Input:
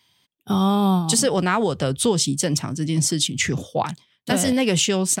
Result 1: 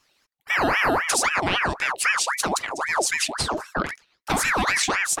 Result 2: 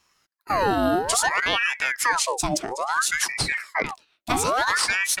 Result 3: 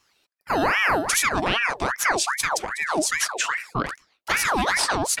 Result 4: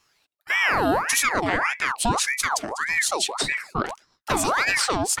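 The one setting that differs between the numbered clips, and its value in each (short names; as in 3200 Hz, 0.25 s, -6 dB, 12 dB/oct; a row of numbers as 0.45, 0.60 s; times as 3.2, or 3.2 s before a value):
ring modulator with a swept carrier, at: 3.8, 0.59, 2.5, 1.7 Hz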